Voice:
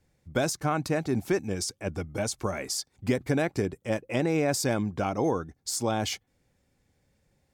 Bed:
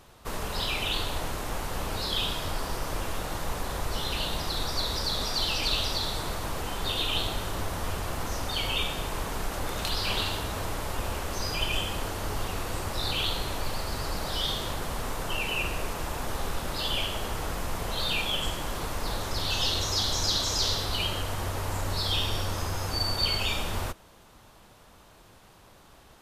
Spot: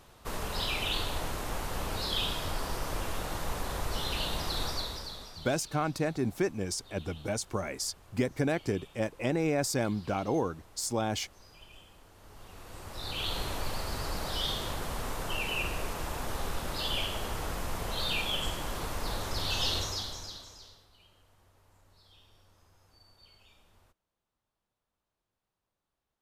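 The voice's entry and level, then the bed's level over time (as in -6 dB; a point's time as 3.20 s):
5.10 s, -3.0 dB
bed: 4.67 s -2.5 dB
5.62 s -25 dB
12.08 s -25 dB
13.39 s -3 dB
19.77 s -3 dB
20.91 s -33 dB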